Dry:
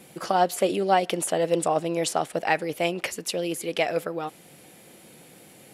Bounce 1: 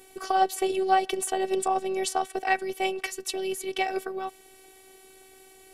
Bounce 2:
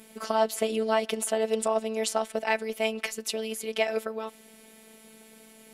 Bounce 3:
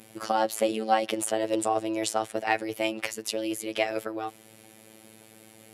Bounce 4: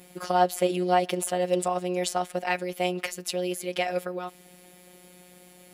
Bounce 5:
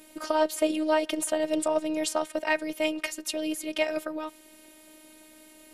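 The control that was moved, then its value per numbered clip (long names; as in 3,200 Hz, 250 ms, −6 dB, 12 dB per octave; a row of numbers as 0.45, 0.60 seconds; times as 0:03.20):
phases set to zero, frequency: 380, 220, 110, 180, 310 Hertz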